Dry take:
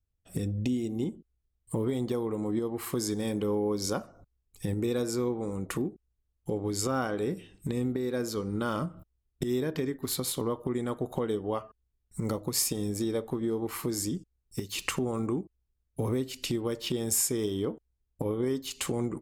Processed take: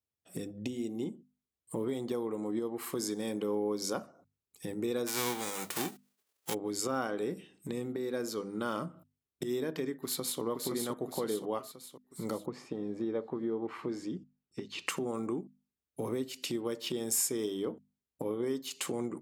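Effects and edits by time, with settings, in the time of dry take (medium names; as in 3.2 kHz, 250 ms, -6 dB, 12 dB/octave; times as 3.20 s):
5.06–6.53 s: formants flattened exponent 0.3
9.96–10.41 s: echo throw 520 ms, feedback 55%, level -4 dB
12.45–14.86 s: low-pass 1.5 kHz -> 3.8 kHz
whole clip: high-pass 190 Hz 12 dB/octave; hum notches 50/100/150/200/250 Hz; trim -3 dB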